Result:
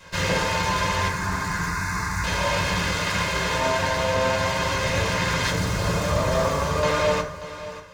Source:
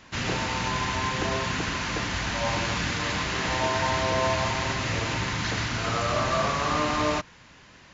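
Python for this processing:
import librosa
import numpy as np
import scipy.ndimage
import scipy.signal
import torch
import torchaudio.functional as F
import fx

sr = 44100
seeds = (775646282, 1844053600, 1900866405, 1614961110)

y = fx.lower_of_two(x, sr, delay_ms=1.9)
y = fx.peak_eq(y, sr, hz=2300.0, db=-9.5, octaves=2.9, at=(5.5, 6.83))
y = fx.rider(y, sr, range_db=10, speed_s=0.5)
y = fx.fixed_phaser(y, sr, hz=1300.0, stages=4, at=(1.08, 2.24))
y = y + 10.0 ** (-14.0 / 20.0) * np.pad(y, (int(586 * sr / 1000.0), 0))[:len(y)]
y = fx.rev_fdn(y, sr, rt60_s=0.6, lf_ratio=0.85, hf_ratio=0.45, size_ms=33.0, drr_db=-1.5)
y = F.gain(torch.from_numpy(y), 2.0).numpy()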